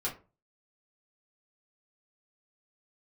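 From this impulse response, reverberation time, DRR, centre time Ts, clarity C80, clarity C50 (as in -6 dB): 0.35 s, -7.5 dB, 19 ms, 18.0 dB, 11.5 dB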